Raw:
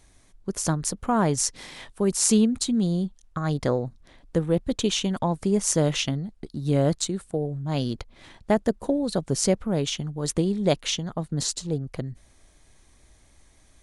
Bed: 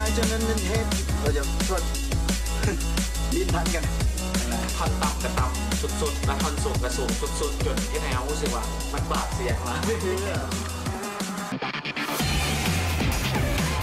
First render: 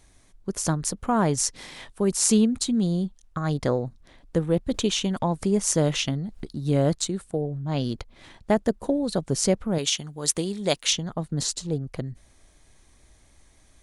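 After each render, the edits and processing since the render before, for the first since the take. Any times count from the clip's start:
0:04.74–0:06.53: upward compression, threshold −26 dBFS
0:07.41–0:07.84: high-frequency loss of the air 59 metres
0:09.78–0:10.93: spectral tilt +2.5 dB per octave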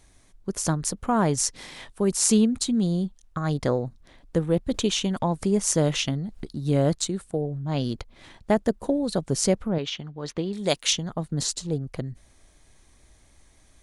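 0:09.68–0:10.53: high-frequency loss of the air 250 metres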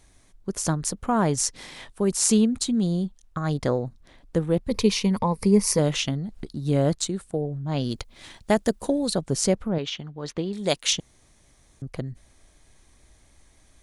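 0:04.68–0:05.79: EQ curve with evenly spaced ripples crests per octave 0.88, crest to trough 11 dB
0:07.90–0:09.12: high-shelf EQ 3,400 Hz → 2,200 Hz +10.5 dB
0:11.00–0:11.82: fill with room tone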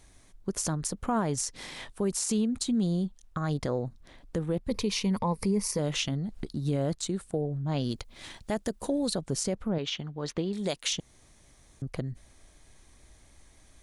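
downward compressor 1.5 to 1, threshold −30 dBFS, peak gain reduction 6.5 dB
brickwall limiter −19 dBFS, peak gain reduction 11 dB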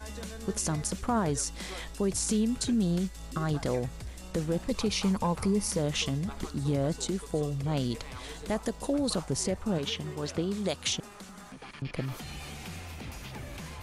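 mix in bed −17 dB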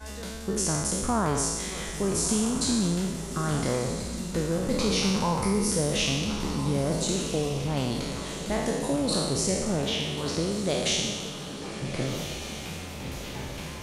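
peak hold with a decay on every bin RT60 1.29 s
feedback delay with all-pass diffusion 1,344 ms, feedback 49%, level −10 dB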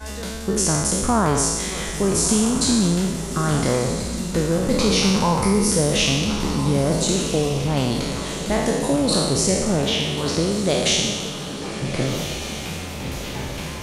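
level +7 dB

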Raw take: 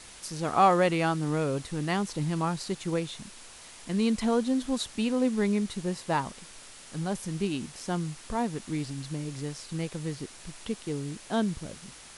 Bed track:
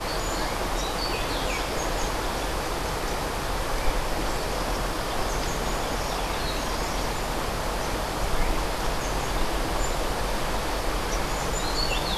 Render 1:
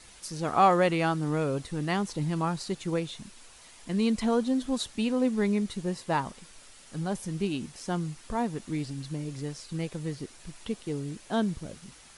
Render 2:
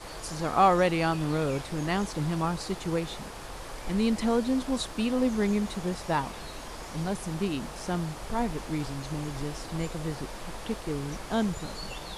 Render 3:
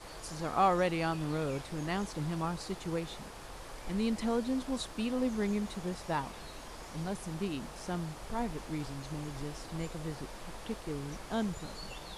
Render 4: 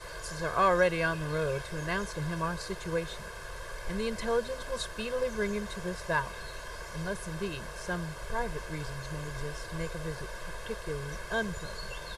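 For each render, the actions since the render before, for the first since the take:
broadband denoise 6 dB, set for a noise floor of −49 dBFS
mix in bed track −13 dB
level −6 dB
parametric band 1,600 Hz +9 dB 0.37 octaves; comb filter 1.9 ms, depth 97%

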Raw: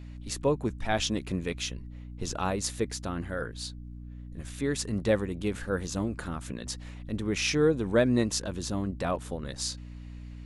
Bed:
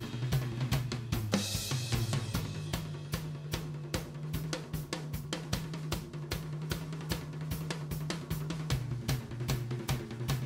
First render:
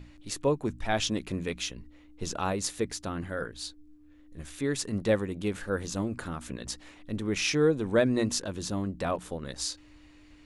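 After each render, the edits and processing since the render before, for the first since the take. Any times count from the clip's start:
mains-hum notches 60/120/180/240 Hz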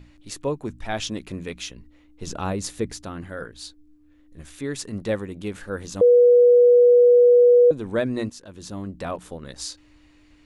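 0:02.27–0:03.04: low-shelf EQ 370 Hz +7 dB
0:06.01–0:07.71: beep over 486 Hz −10 dBFS
0:08.30–0:08.90: fade in, from −16 dB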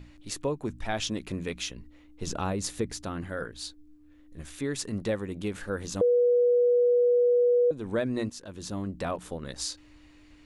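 downward compressor 2 to 1, threshold −28 dBFS, peak gain reduction 8.5 dB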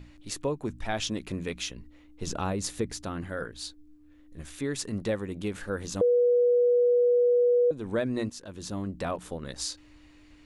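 no processing that can be heard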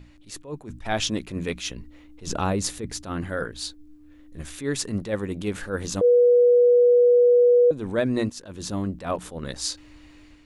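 automatic gain control gain up to 6 dB
level that may rise only so fast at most 170 dB per second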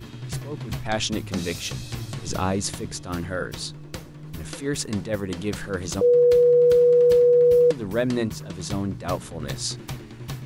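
mix in bed −0.5 dB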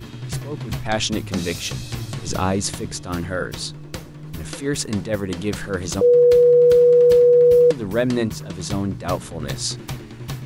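level +3.5 dB

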